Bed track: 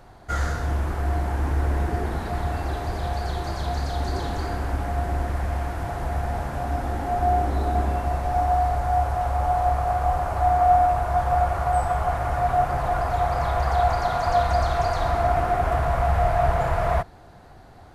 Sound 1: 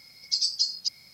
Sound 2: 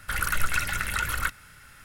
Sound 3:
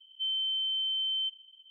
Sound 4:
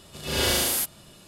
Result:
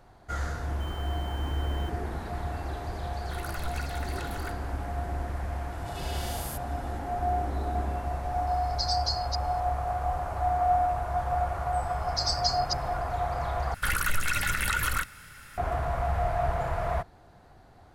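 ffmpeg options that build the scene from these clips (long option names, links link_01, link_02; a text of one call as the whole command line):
ffmpeg -i bed.wav -i cue0.wav -i cue1.wav -i cue2.wav -i cue3.wav -filter_complex "[2:a]asplit=2[link_01][link_02];[1:a]asplit=2[link_03][link_04];[0:a]volume=-7dB[link_05];[3:a]acrusher=bits=7:dc=4:mix=0:aa=0.000001[link_06];[4:a]acompressor=threshold=-30dB:ratio=6:attack=3.2:release=140:knee=1:detection=peak[link_07];[link_03]equalizer=frequency=4200:width=3.5:gain=7[link_08];[link_04]dynaudnorm=framelen=110:gausssize=5:maxgain=10dB[link_09];[link_02]alimiter=level_in=17.5dB:limit=-1dB:release=50:level=0:latency=1[link_10];[link_05]asplit=2[link_11][link_12];[link_11]atrim=end=13.744[link_13];[link_10]atrim=end=1.84,asetpts=PTS-STARTPTS,volume=-15dB[link_14];[link_12]atrim=start=15.576[link_15];[link_06]atrim=end=1.7,asetpts=PTS-STARTPTS,volume=-17dB,afade=type=in:duration=0.004:curve=hsin,afade=type=out:start_time=1.696:duration=0.004:curve=hsin,adelay=600[link_16];[link_01]atrim=end=1.84,asetpts=PTS-STARTPTS,volume=-14dB,afade=type=in:duration=0.004:curve=hsin,afade=type=out:start_time=1.836:duration=0.004:curve=hsin,adelay=3220[link_17];[link_07]atrim=end=1.27,asetpts=PTS-STARTPTS,volume=-7dB,afade=type=in:duration=0.004:curve=hsin,afade=type=out:start_time=1.266:duration=0.004:curve=hsin,adelay=5720[link_18];[link_08]atrim=end=1.13,asetpts=PTS-STARTPTS,volume=-9.5dB,afade=type=in:duration=0.004:curve=hsin,afade=type=out:start_time=1.126:duration=0.004:curve=hsin,adelay=8470[link_19];[link_09]atrim=end=1.13,asetpts=PTS-STARTPTS,volume=-11.5dB,afade=type=in:duration=0.004:curve=hsin,afade=type=out:start_time=1.126:duration=0.004:curve=hsin,adelay=11850[link_20];[link_13][link_14]acrossfade=duration=0.004:curve1=hsin:curve2=hsin[link_21];[link_21][link_15]acrossfade=duration=0.004:curve1=hsin:curve2=hsin[link_22];[link_22][link_16][link_17][link_18][link_19][link_20]amix=inputs=6:normalize=0" out.wav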